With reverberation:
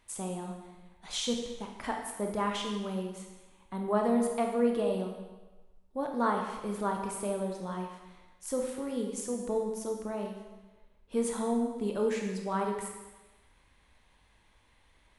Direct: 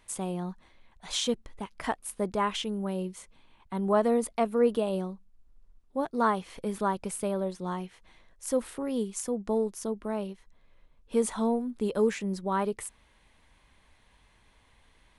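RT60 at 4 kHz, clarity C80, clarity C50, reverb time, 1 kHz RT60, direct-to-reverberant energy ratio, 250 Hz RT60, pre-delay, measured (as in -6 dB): 1.1 s, 6.0 dB, 4.0 dB, 1.2 s, 1.2 s, 1.5 dB, 1.1 s, 19 ms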